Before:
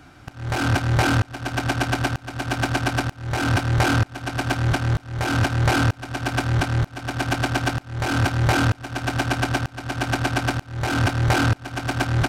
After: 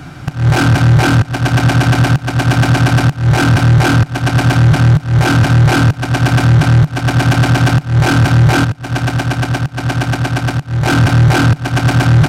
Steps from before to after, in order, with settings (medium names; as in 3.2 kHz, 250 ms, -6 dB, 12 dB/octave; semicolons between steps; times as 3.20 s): peaking EQ 150 Hz +11.5 dB 0.63 oct; 8.64–10.86 s: compression 12:1, threshold -25 dBFS, peak gain reduction 14.5 dB; loudness maximiser +14.5 dB; trim -1 dB